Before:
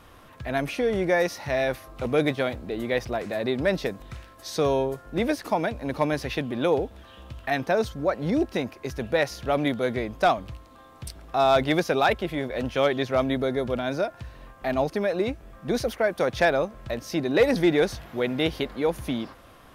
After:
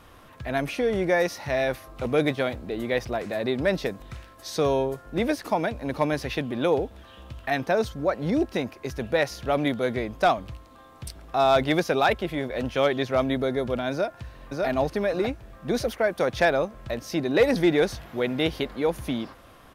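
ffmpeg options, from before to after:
-filter_complex "[0:a]asplit=2[a][b];[b]afade=t=in:st=13.91:d=0.01,afade=t=out:st=14.66:d=0.01,aecho=0:1:600|1200|1800|2400:0.841395|0.252419|0.0757256|0.0227177[c];[a][c]amix=inputs=2:normalize=0"

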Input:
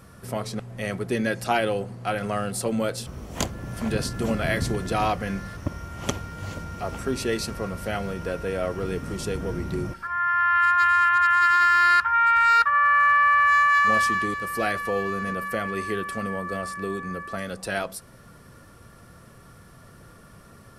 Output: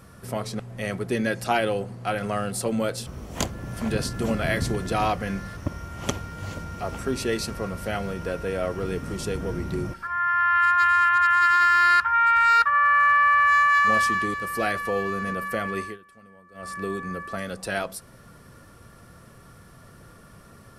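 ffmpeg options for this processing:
-filter_complex "[0:a]asplit=3[a][b][c];[a]atrim=end=15.98,asetpts=PTS-STARTPTS,afade=t=out:st=15.78:d=0.2:silence=0.0841395[d];[b]atrim=start=15.98:end=16.54,asetpts=PTS-STARTPTS,volume=-21.5dB[e];[c]atrim=start=16.54,asetpts=PTS-STARTPTS,afade=t=in:d=0.2:silence=0.0841395[f];[d][e][f]concat=n=3:v=0:a=1"

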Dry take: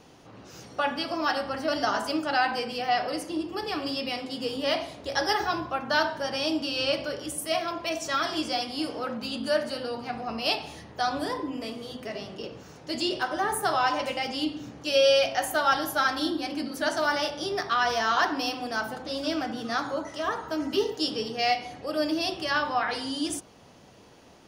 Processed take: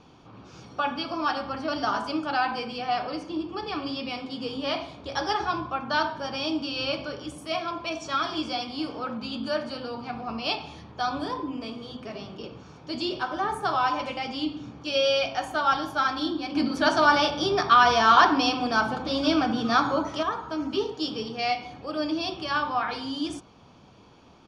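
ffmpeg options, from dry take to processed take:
-filter_complex "[0:a]asettb=1/sr,asplit=3[a][b][c];[a]atrim=end=3.004[d];[b]atrim=start=3:end=4.04,asetpts=PTS-STARTPTS,afade=t=in:d=0.004:c=qsin,afade=t=out:st=1.036:d=0.004:c=qsin,lowpass=7.3k[e];[c]atrim=start=4.036[f];[d][e]acrossfade=d=0.004:c1=hsin:c2=qsin[g];[g][f]acrossfade=d=0.004:c1=qsin:c2=hsin,asplit=3[h][i][j];[h]atrim=end=16.552[k];[i]atrim=start=16.548:end=20.232,asetpts=PTS-STARTPTS,volume=7dB[l];[j]atrim=start=20.228[m];[k][l]acrossfade=d=0.004:c1=hsin:c2=hsin[n];[n][m]acrossfade=d=0.004:c1=hsin:c2=hsin,lowpass=4.3k,bandreject=f=2k:w=5.9,aecho=1:1:0.9:0.34"

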